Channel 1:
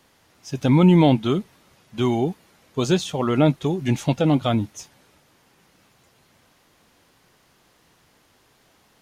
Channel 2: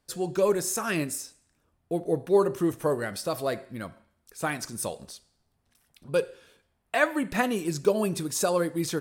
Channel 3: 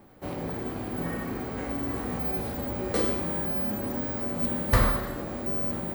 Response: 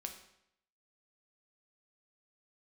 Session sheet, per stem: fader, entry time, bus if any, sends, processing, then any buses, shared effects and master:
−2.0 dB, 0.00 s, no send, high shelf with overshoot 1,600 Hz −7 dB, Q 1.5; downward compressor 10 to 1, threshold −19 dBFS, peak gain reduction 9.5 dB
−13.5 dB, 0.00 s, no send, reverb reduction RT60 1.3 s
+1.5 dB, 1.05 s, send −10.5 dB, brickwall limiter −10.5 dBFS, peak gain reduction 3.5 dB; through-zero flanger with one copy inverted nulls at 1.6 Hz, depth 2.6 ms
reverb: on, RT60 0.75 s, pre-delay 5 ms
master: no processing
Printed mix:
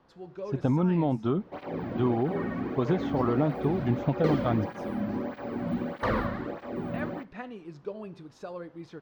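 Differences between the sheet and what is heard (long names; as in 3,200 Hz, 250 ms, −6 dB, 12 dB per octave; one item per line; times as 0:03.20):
stem 2: missing reverb reduction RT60 1.3 s
stem 3: entry 1.05 s → 1.30 s
master: extra high-frequency loss of the air 250 metres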